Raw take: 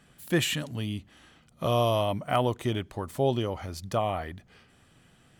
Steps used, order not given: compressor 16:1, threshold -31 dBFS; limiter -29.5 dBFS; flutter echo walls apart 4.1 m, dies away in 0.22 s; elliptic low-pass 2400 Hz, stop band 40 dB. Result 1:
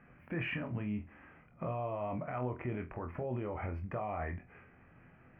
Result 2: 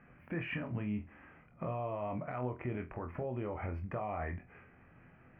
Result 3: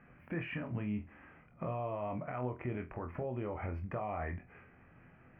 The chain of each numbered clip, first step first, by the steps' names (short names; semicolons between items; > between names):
elliptic low-pass > limiter > compressor > flutter echo; elliptic low-pass > compressor > limiter > flutter echo; compressor > elliptic low-pass > limiter > flutter echo